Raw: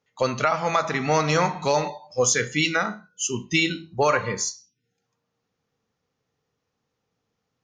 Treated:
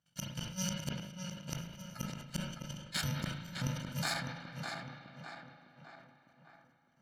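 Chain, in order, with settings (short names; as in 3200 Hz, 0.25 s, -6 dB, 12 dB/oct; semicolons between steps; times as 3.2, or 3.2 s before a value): FFT order left unsorted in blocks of 128 samples; LPF 4700 Hz 12 dB/oct; bell 140 Hz +12.5 dB 0.44 oct; level quantiser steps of 13 dB; flipped gate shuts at -27 dBFS, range -36 dB; tape echo 0.659 s, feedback 57%, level -3.5 dB, low-pass 2500 Hz; spring tank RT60 3.9 s, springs 39/44 ms, chirp 80 ms, DRR 8 dB; speed mistake 44.1 kHz file played as 48 kHz; sustainer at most 60 dB/s; gain +4.5 dB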